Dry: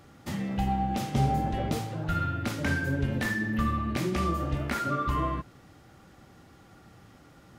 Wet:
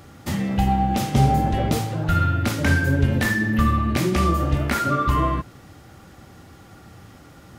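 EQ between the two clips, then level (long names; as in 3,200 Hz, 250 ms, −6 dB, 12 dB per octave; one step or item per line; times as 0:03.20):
parametric band 86 Hz +5 dB 0.54 octaves
high-shelf EQ 7,800 Hz +4.5 dB
+7.5 dB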